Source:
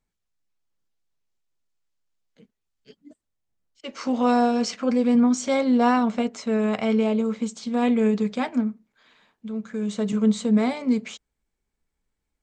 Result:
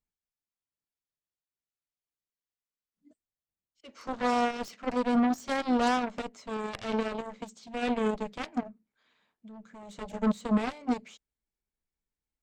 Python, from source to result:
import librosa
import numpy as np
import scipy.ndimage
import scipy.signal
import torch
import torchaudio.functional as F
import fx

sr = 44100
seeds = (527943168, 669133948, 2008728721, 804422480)

y = fx.cheby_harmonics(x, sr, harmonics=(7,), levels_db=(-13,), full_scale_db=-9.0)
y = fx.spec_freeze(y, sr, seeds[0], at_s=2.33, hold_s=0.63)
y = y * 10.0 ** (-7.5 / 20.0)